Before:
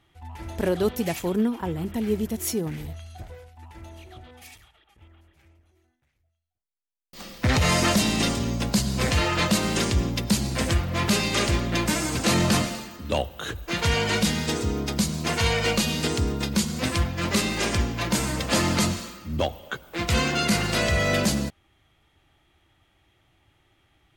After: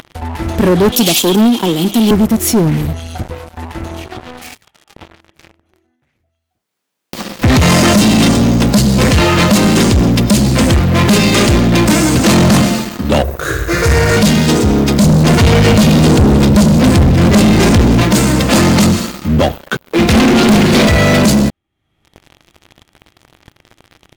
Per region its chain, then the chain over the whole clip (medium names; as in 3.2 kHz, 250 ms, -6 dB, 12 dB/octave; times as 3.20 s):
0.92–2.11 s: high-pass 200 Hz 24 dB/octave + resonant high shelf 2.5 kHz +10 dB, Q 3
4.06–7.42 s: high-pass 220 Hz 6 dB/octave + treble shelf 4.8 kHz -7.5 dB
13.22–14.17 s: static phaser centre 840 Hz, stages 6 + doubling 15 ms -7.5 dB + flutter echo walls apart 9.8 m, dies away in 0.82 s
15.02–18.03 s: bass shelf 360 Hz +10 dB + hum notches 60/120/180/240/300/360/420/480/540 Hz + delay 303 ms -13.5 dB
19.84–20.87 s: hum notches 50/100/150/200/250 Hz + small resonant body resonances 240/390/2400/3900 Hz, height 10 dB, ringing for 40 ms + loudspeaker Doppler distortion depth 0.81 ms
whole clip: peaking EQ 210 Hz +7.5 dB 2.1 oct; upward compressor, threshold -30 dBFS; waveshaping leveller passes 5; trim -4 dB